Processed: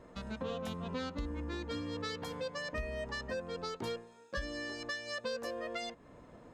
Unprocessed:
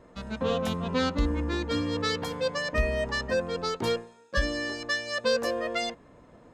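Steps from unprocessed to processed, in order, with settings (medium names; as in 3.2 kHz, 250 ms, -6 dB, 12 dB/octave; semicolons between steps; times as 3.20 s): compression 2.5:1, threshold -39 dBFS, peak gain reduction 13 dB; trim -1.5 dB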